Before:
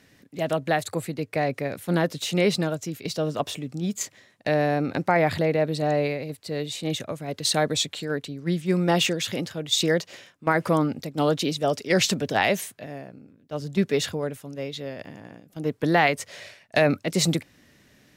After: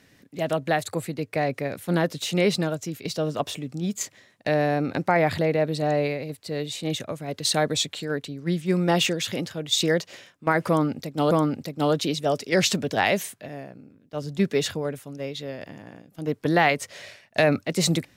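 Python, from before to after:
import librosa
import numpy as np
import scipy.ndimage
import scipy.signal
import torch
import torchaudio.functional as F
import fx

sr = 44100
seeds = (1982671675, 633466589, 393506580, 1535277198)

y = fx.edit(x, sr, fx.repeat(start_s=10.69, length_s=0.62, count=2), tone=tone)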